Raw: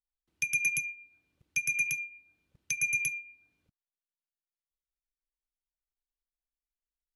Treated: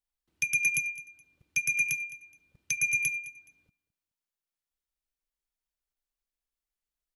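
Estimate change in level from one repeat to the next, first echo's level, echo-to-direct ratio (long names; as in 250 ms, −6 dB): −11.5 dB, −19.0 dB, −18.5 dB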